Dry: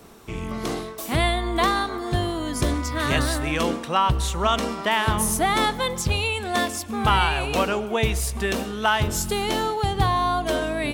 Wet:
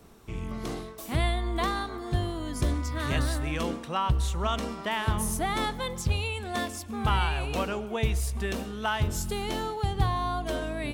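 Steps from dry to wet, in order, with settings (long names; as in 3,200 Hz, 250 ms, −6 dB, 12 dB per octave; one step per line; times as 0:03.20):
low-shelf EQ 150 Hz +8.5 dB
level −8.5 dB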